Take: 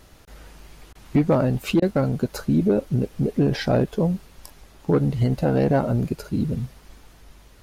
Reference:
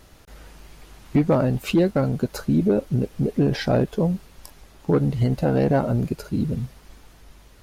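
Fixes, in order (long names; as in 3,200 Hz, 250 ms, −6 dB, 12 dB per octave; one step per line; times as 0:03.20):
repair the gap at 0:00.93/0:01.80, 20 ms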